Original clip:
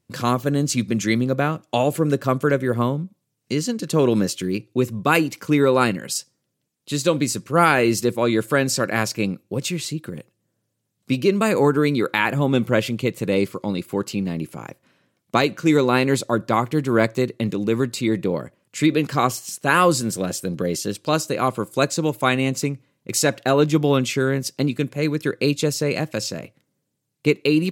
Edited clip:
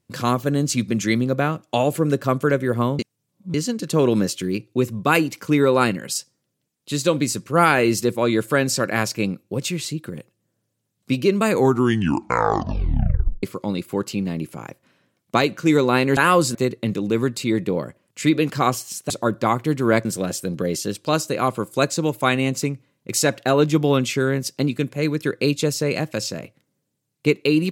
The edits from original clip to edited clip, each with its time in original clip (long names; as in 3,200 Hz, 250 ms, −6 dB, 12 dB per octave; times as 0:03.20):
0:02.99–0:03.54: reverse
0:11.51: tape stop 1.92 s
0:16.17–0:17.12: swap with 0:19.67–0:20.05